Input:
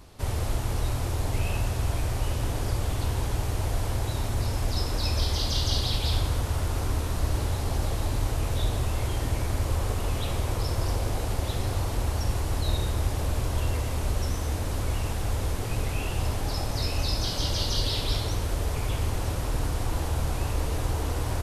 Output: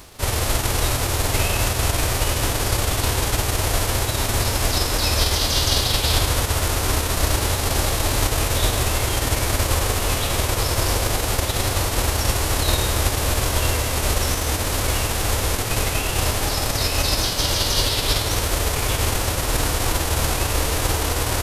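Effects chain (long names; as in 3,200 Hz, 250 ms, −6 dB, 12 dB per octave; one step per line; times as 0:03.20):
spectral envelope flattened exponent 0.6
level +5.5 dB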